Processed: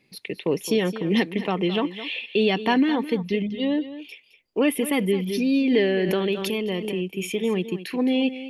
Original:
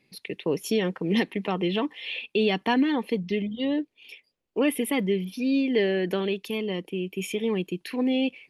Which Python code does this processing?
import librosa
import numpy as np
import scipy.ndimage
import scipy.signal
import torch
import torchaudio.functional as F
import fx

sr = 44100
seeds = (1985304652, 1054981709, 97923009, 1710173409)

y = x + 10.0 ** (-13.5 / 20.0) * np.pad(x, (int(215 * sr / 1000.0), 0))[:len(x)]
y = fx.pre_swell(y, sr, db_per_s=38.0, at=(5.16, 7.12))
y = y * 10.0 ** (2.5 / 20.0)